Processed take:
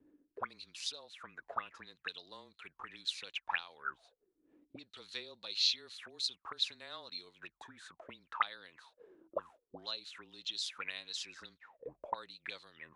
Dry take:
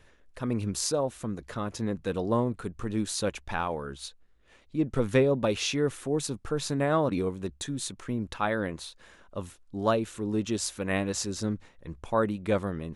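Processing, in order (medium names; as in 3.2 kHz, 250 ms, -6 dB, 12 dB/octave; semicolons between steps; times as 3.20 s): auto-wah 290–4200 Hz, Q 15, up, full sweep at -26 dBFS; frequency shift -24 Hz; trim +13 dB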